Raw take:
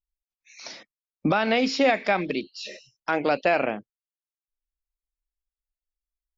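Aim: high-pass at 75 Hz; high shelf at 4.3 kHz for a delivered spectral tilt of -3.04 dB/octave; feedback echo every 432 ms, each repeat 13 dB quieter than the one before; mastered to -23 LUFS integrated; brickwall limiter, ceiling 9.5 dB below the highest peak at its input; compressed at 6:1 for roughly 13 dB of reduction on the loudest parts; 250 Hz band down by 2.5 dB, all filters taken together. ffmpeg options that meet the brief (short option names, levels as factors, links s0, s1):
-af "highpass=75,equalizer=f=250:t=o:g=-3,highshelf=f=4300:g=6.5,acompressor=threshold=0.0282:ratio=6,alimiter=level_in=1.12:limit=0.0631:level=0:latency=1,volume=0.891,aecho=1:1:432|864|1296:0.224|0.0493|0.0108,volume=5.01"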